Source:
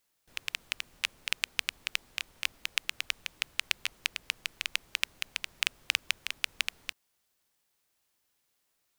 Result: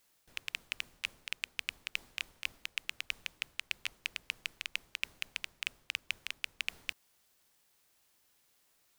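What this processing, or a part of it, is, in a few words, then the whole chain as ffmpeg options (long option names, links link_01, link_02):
compression on the reversed sound: -af "areverse,acompressor=threshold=-39dB:ratio=6,areverse,volume=5.5dB"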